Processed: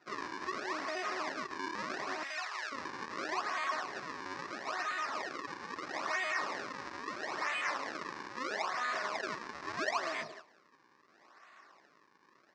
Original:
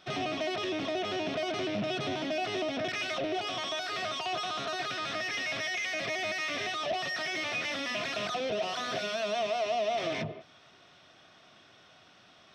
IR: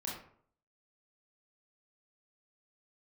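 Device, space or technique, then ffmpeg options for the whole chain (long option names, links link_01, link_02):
circuit-bent sampling toy: -filter_complex "[0:a]asettb=1/sr,asplit=3[link_01][link_02][link_03];[link_01]atrim=end=4.464[link_04];[link_02]atrim=start=4.46:end=5.87,asetpts=PTS-STARTPTS,afade=type=in:duration=0.004:curve=qsin,afade=type=out:start_time=1.406:duration=0.004:curve=qsin,equalizer=frequency=5100:width=0.48:gain=-3[link_05];[link_03]atrim=start=5.866[link_06];[link_04][link_05]acrossfade=duration=0.004:curve1=hsin:curve2=qsin[link_07];[link_07][link_06]acrossfade=duration=0.004:curve1=qsin:curve2=hsin,acrusher=samples=38:mix=1:aa=0.000001:lfo=1:lforange=60.8:lforate=0.76,highpass=470,equalizer=frequency=480:width_type=q:width=4:gain=-6,equalizer=frequency=690:width_type=q:width=4:gain=-5,equalizer=frequency=1100:width_type=q:width=4:gain=8,equalizer=frequency=1800:width_type=q:width=4:gain=7,equalizer=frequency=3200:width_type=q:width=4:gain=-8,equalizer=frequency=5300:width_type=q:width=4:gain=4,lowpass=frequency=5800:width=0.5412,lowpass=frequency=5800:width=1.3066,asettb=1/sr,asplit=3[link_08][link_09][link_10];[link_08]atrim=end=2.234[link_11];[link_09]atrim=start=2.23:end=2.72,asetpts=PTS-STARTPTS,afade=type=in:duration=0.004:curve=qsin,afade=type=out:start_time=0.486:duration=0.004:curve=qsin,highpass=1100[link_12];[link_10]atrim=start=2.716[link_13];[link_11][link_12]acrossfade=duration=0.004:curve1=hsin:curve2=qsin[link_14];[link_14][link_13]acrossfade=duration=0.004:curve1=qsin:curve2=hsin,aecho=1:1:148:0.075,volume=-2dB"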